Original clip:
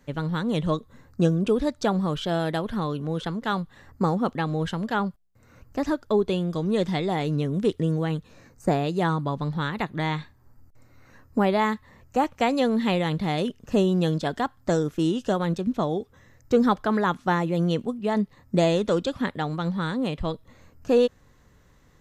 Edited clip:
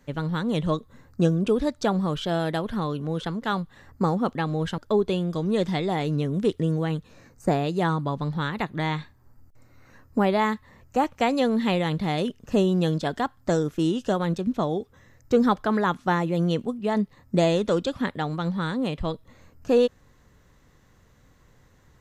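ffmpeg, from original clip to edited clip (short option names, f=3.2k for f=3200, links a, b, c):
-filter_complex "[0:a]asplit=2[a][b];[a]atrim=end=4.782[c];[b]atrim=start=5.978[d];[c][d]acrossfade=d=0.004:c1=hsin:c2=hsin"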